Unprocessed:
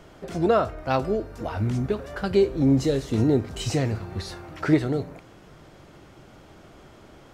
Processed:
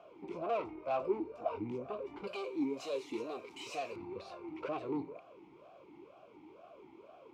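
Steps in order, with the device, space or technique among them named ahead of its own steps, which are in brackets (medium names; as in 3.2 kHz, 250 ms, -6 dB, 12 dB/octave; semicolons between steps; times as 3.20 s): 2.27–3.96 s: tilt EQ +4.5 dB/octave; talk box (valve stage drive 26 dB, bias 0.45; talking filter a-u 2.1 Hz); trim +5.5 dB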